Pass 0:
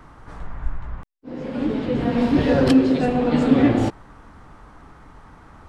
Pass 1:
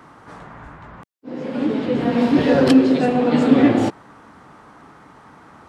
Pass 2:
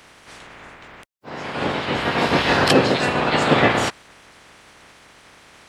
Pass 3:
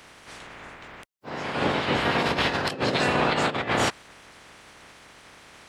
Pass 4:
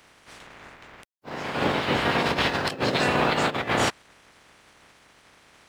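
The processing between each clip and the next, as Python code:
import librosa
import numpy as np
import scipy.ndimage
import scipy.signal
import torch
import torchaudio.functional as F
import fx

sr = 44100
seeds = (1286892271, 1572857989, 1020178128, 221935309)

y1 = scipy.signal.sosfilt(scipy.signal.butter(2, 160.0, 'highpass', fs=sr, output='sos'), x)
y1 = F.gain(torch.from_numpy(y1), 3.0).numpy()
y2 = fx.spec_clip(y1, sr, under_db=24)
y2 = F.gain(torch.from_numpy(y2), -2.5).numpy()
y3 = fx.over_compress(y2, sr, threshold_db=-20.0, ratio=-0.5)
y3 = F.gain(torch.from_numpy(y3), -3.5).numpy()
y4 = fx.law_mismatch(y3, sr, coded='A')
y4 = F.gain(torch.from_numpy(y4), 1.0).numpy()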